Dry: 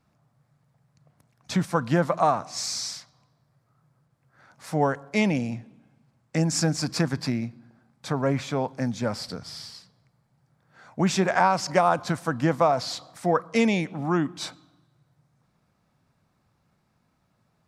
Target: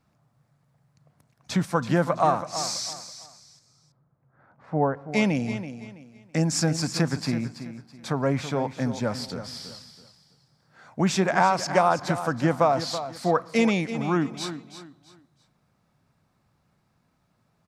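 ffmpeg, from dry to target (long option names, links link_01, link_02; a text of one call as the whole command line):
ffmpeg -i in.wav -filter_complex "[0:a]asettb=1/sr,asplit=3[link_01][link_02][link_03];[link_01]atrim=end=2.934[link_04];[link_02]atrim=start=2.93:end=5.09,asetpts=PTS-STARTPTS,afade=type=in:duration=0.004:curve=qsin,afade=type=out:start_time=2.156:duration=0.004:curve=qsin,lowpass=1200[link_05];[link_03]atrim=start=5.086[link_06];[link_04][link_05]acrossfade=duration=0.004:curve1=hsin:curve2=qsin[link_07];[link_07][link_06]acrossfade=duration=0.004:curve1=qsin:curve2=hsin,asplit=2[link_08][link_09];[link_09]aecho=0:1:329|658|987:0.266|0.0772|0.0224[link_10];[link_08][link_10]amix=inputs=2:normalize=0" out.wav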